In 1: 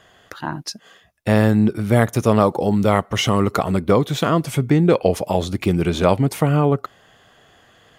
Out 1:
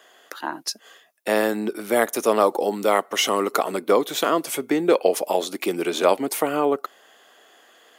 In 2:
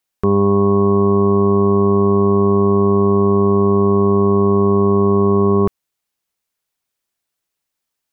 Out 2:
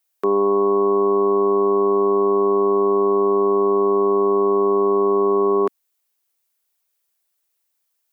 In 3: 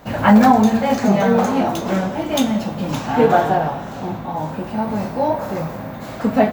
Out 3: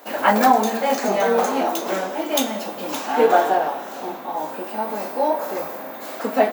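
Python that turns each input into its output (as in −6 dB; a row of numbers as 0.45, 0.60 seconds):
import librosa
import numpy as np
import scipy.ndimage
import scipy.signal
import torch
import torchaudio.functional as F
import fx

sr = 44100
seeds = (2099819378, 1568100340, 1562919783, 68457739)

y = scipy.signal.sosfilt(scipy.signal.butter(4, 300.0, 'highpass', fs=sr, output='sos'), x)
y = fx.high_shelf(y, sr, hz=8900.0, db=11.0)
y = y * librosa.db_to_amplitude(-1.0)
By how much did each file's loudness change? −4.0, −3.5, −3.0 LU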